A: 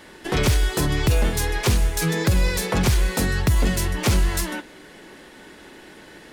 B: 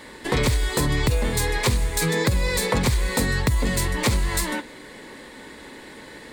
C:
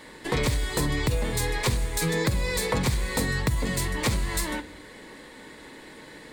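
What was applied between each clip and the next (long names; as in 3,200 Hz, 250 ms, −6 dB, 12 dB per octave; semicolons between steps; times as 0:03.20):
EQ curve with evenly spaced ripples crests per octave 0.99, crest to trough 6 dB; downward compressor, threshold −20 dBFS, peak gain reduction 7 dB; level +2.5 dB
rectangular room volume 2,100 cubic metres, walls furnished, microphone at 0.56 metres; level −4 dB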